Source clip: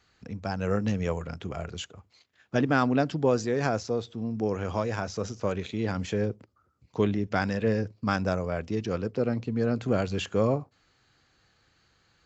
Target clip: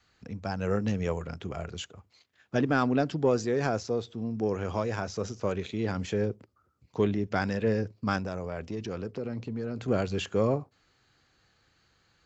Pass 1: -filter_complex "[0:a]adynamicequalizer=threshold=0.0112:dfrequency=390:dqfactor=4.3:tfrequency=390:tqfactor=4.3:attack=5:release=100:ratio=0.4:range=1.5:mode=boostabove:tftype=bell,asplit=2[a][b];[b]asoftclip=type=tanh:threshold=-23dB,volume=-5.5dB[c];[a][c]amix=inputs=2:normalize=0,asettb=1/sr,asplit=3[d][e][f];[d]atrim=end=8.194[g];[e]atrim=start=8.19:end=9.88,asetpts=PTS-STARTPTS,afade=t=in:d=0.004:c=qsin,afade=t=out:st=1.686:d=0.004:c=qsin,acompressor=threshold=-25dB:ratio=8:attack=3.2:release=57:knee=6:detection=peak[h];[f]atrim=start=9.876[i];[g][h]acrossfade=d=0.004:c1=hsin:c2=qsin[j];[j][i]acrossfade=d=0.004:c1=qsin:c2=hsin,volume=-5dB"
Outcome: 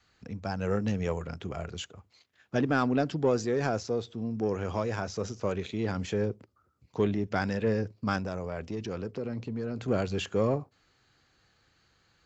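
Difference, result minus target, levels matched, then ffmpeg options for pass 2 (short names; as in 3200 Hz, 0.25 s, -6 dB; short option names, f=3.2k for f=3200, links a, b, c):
soft clip: distortion +8 dB
-filter_complex "[0:a]adynamicequalizer=threshold=0.0112:dfrequency=390:dqfactor=4.3:tfrequency=390:tqfactor=4.3:attack=5:release=100:ratio=0.4:range=1.5:mode=boostabove:tftype=bell,asplit=2[a][b];[b]asoftclip=type=tanh:threshold=-15.5dB,volume=-5.5dB[c];[a][c]amix=inputs=2:normalize=0,asettb=1/sr,asplit=3[d][e][f];[d]atrim=end=8.194[g];[e]atrim=start=8.19:end=9.88,asetpts=PTS-STARTPTS,afade=t=in:d=0.004:c=qsin,afade=t=out:st=1.686:d=0.004:c=qsin,acompressor=threshold=-25dB:ratio=8:attack=3.2:release=57:knee=6:detection=peak[h];[f]atrim=start=9.876[i];[g][h]acrossfade=d=0.004:c1=hsin:c2=qsin[j];[j][i]acrossfade=d=0.004:c1=qsin:c2=hsin,volume=-5dB"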